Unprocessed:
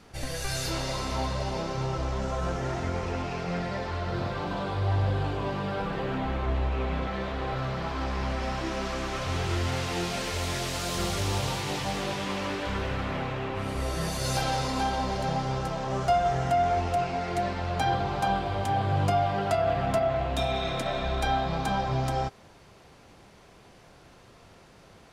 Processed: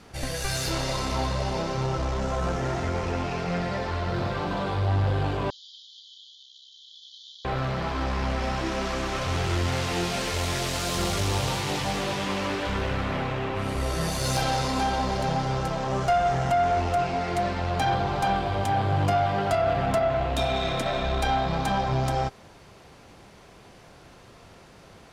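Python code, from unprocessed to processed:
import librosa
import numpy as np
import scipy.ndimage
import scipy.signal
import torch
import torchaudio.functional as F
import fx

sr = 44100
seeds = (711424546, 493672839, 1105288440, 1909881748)

y = fx.tube_stage(x, sr, drive_db=21.0, bias=0.35)
y = fx.brickwall_bandpass(y, sr, low_hz=3000.0, high_hz=7200.0, at=(5.5, 7.45))
y = F.gain(torch.from_numpy(y), 4.5).numpy()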